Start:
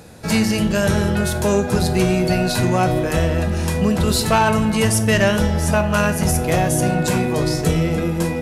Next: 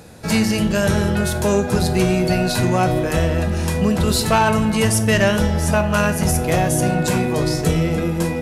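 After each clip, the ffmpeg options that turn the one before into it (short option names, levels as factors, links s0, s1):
-af anull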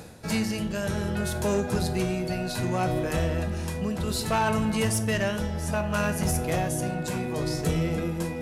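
-af "areverse,acompressor=mode=upward:threshold=0.1:ratio=2.5,areverse,tremolo=f=0.64:d=0.38,asoftclip=type=hard:threshold=0.316,volume=0.422"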